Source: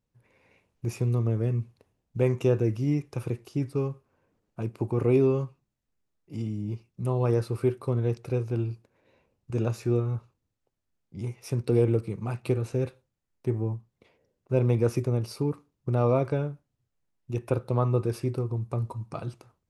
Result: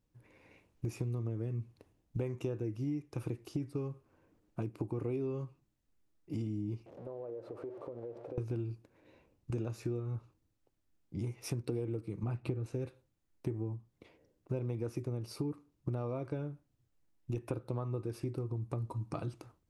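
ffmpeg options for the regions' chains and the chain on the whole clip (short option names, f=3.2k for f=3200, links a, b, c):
-filter_complex "[0:a]asettb=1/sr,asplit=3[a][b][c];[a]atrim=end=6.864[d];[b]atrim=start=6.86:end=8.38,asetpts=PTS-STARTPTS,afade=t=in:d=0.004:c=qsin,afade=t=out:st=1.516:d=0.004:c=qsin,aeval=exprs='val(0)+0.5*0.0224*sgn(val(0))':c=same,bandpass=f=560:t=q:w=3.8,acompressor=threshold=-41dB:ratio=6:attack=3.2:release=140:knee=1:detection=peak[e];[c]atrim=start=8.376[f];[d][e]acrossfade=d=0.004:c1=hsin:c2=qsin[g];[g][f]acrossfade=d=0.004:c1=qsin:c2=hsin,asettb=1/sr,asplit=3[h][i][j];[h]atrim=end=12.234[k];[i]atrim=start=12.23:end=12.66,asetpts=PTS-STARTPTS,afade=t=in:d=0.004:c=qsin,afade=t=out:st=0.426:d=0.004:c=qsin,lowpass=f=2.9k:p=1,lowshelf=f=200:g=6[l];[j]atrim=start=12.656[m];[k][l]acrossfade=d=0.004:c1=hsin:c2=qsin[n];[n][m]acrossfade=d=0.004:c1=qsin:c2=hsin,equalizer=f=310:w=5.4:g=9,acompressor=threshold=-35dB:ratio=6,lowshelf=f=81:g=5"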